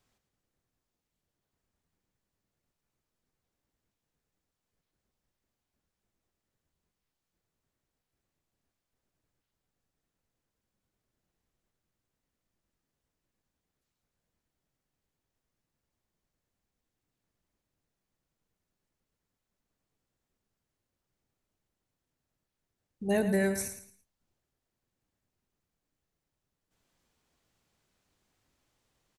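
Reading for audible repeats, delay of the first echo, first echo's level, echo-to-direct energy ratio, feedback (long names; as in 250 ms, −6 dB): 3, 111 ms, −10.0 dB, −9.5 dB, 28%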